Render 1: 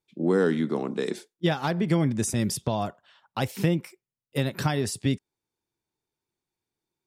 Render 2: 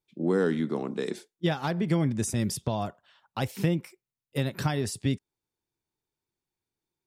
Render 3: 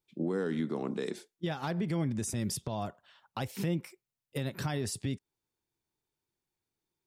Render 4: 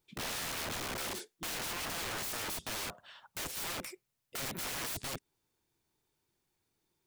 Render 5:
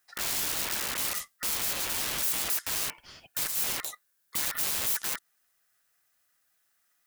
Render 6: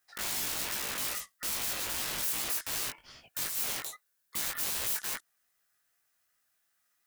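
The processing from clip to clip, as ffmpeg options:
-af "lowshelf=f=82:g=6,volume=-3dB"
-af "alimiter=limit=-23.5dB:level=0:latency=1:release=175"
-af "aeval=exprs='(mod(106*val(0)+1,2)-1)/106':c=same,volume=7dB"
-af "aeval=exprs='val(0)*sin(2*PI*1600*n/s)':c=same,crystalizer=i=1.5:c=0,volume=5dB"
-af "flanger=delay=16.5:depth=4.5:speed=2.5"

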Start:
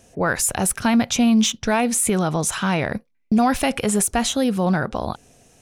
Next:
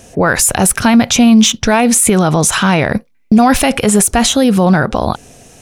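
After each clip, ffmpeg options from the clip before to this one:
-af "alimiter=level_in=14dB:limit=-1dB:release=50:level=0:latency=1,volume=-1dB"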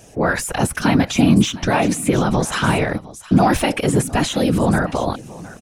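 -filter_complex "[0:a]aecho=1:1:709:0.112,acrossover=split=2900[a][b];[b]acompressor=threshold=-18dB:ratio=4:attack=1:release=60[c];[a][c]amix=inputs=2:normalize=0,afftfilt=real='hypot(re,im)*cos(2*PI*random(0))':imag='hypot(re,im)*sin(2*PI*random(1))':win_size=512:overlap=0.75"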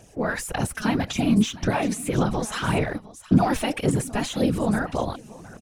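-af "aphaser=in_gain=1:out_gain=1:delay=4.8:decay=0.49:speed=1.8:type=sinusoidal,volume=-8.5dB"

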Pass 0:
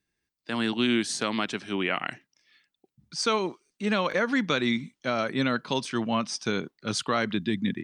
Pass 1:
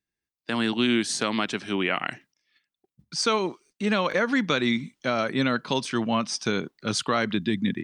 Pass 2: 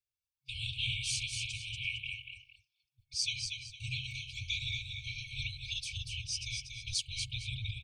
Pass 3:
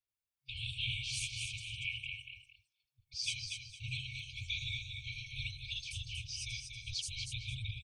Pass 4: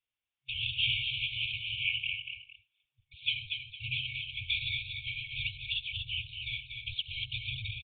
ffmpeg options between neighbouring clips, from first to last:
-filter_complex "[0:a]agate=range=-13dB:threshold=-58dB:ratio=16:detection=peak,asplit=2[a][b];[b]acompressor=threshold=-33dB:ratio=6,volume=-2dB[c];[a][c]amix=inputs=2:normalize=0"
-af "afftfilt=real='hypot(re,im)*cos(2*PI*random(0))':imag='hypot(re,im)*sin(2*PI*random(1))':win_size=512:overlap=0.75,aecho=1:1:238|458:0.531|0.15,afftfilt=real='re*(1-between(b*sr/4096,130,2200))':imag='im*(1-between(b*sr/4096,130,2200))':win_size=4096:overlap=0.75"
-filter_complex "[0:a]acrossover=split=5700[a][b];[b]adelay=80[c];[a][c]amix=inputs=2:normalize=0,volume=-2dB"
-af "equalizer=f=2.9k:w=1.5:g=10,aresample=8000,aresample=44100"

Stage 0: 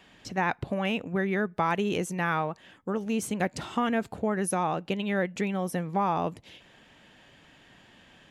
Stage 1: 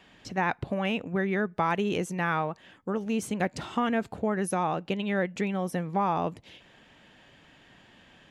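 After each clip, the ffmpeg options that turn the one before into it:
-af "highshelf=f=8.8k:g=-7"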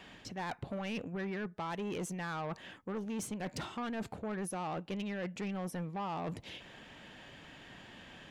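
-af "areverse,acompressor=threshold=-35dB:ratio=6,areverse,asoftclip=type=tanh:threshold=-36.5dB,volume=3.5dB"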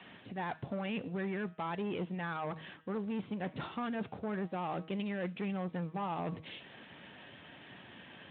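-af "bandreject=f=159:t=h:w=4,bandreject=f=318:t=h:w=4,bandreject=f=477:t=h:w=4,bandreject=f=636:t=h:w=4,bandreject=f=795:t=h:w=4,bandreject=f=954:t=h:w=4,bandreject=f=1.113k:t=h:w=4,bandreject=f=1.272k:t=h:w=4,bandreject=f=1.431k:t=h:w=4,bandreject=f=1.59k:t=h:w=4,bandreject=f=1.749k:t=h:w=4,bandreject=f=1.908k:t=h:w=4,bandreject=f=2.067k:t=h:w=4,bandreject=f=2.226k:t=h:w=4,bandreject=f=2.385k:t=h:w=4,bandreject=f=2.544k:t=h:w=4,bandreject=f=2.703k:t=h:w=4,bandreject=f=2.862k:t=h:w=4,bandreject=f=3.021k:t=h:w=4,bandreject=f=3.18k:t=h:w=4,bandreject=f=3.339k:t=h:w=4,bandreject=f=3.498k:t=h:w=4,bandreject=f=3.657k:t=h:w=4,bandreject=f=3.816k:t=h:w=4,bandreject=f=3.975k:t=h:w=4,bandreject=f=4.134k:t=h:w=4,bandreject=f=4.293k:t=h:w=4,bandreject=f=4.452k:t=h:w=4,bandreject=f=4.611k:t=h:w=4,bandreject=f=4.77k:t=h:w=4,bandreject=f=4.929k:t=h:w=4,bandreject=f=5.088k:t=h:w=4,bandreject=f=5.247k:t=h:w=4,bandreject=f=5.406k:t=h:w=4,bandreject=f=5.565k:t=h:w=4,bandreject=f=5.724k:t=h:w=4,bandreject=f=5.883k:t=h:w=4,bandreject=f=6.042k:t=h:w=4,volume=1dB" -ar 8000 -c:a libspeex -b:a 18k

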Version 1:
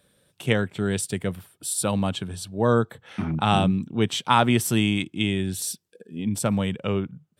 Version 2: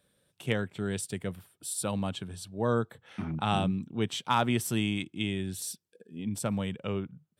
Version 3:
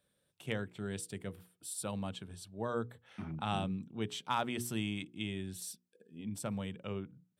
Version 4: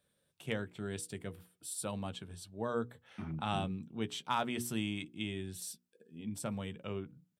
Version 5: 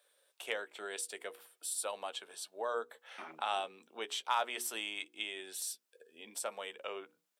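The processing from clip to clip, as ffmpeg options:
-af "asoftclip=type=hard:threshold=-5dB,volume=-7.5dB"
-af "bandreject=f=60:t=h:w=6,bandreject=f=120:t=h:w=6,bandreject=f=180:t=h:w=6,bandreject=f=240:t=h:w=6,bandreject=f=300:t=h:w=6,bandreject=f=360:t=h:w=6,bandreject=f=420:t=h:w=6,bandreject=f=480:t=h:w=6,volume=-7dB"
-filter_complex "[0:a]asplit=2[a][b];[b]adelay=13,volume=-12dB[c];[a][c]amix=inputs=2:normalize=0"
-filter_complex "[0:a]highpass=f=490:w=0.5412,highpass=f=490:w=1.3066,asplit=2[a][b];[b]acompressor=threshold=-48dB:ratio=6,volume=2.5dB[c];[a][c]amix=inputs=2:normalize=0"

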